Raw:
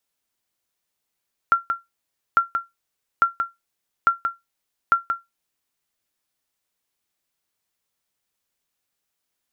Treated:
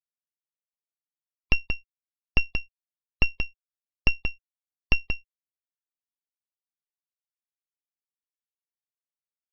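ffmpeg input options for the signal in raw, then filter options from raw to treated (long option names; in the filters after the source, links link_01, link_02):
-f lavfi -i "aevalsrc='0.422*(sin(2*PI*1370*mod(t,0.85))*exp(-6.91*mod(t,0.85)/0.18)+0.447*sin(2*PI*1370*max(mod(t,0.85)-0.18,0))*exp(-6.91*max(mod(t,0.85)-0.18,0)/0.18))':duration=4.25:sample_rate=44100"
-af "afftfilt=real='re*gte(hypot(re,im),0.0126)':imag='im*gte(hypot(re,im),0.0126)':win_size=1024:overlap=0.75,aresample=11025,aeval=exprs='abs(val(0))':channel_layout=same,aresample=44100,asuperstop=centerf=1500:order=20:qfactor=6.6"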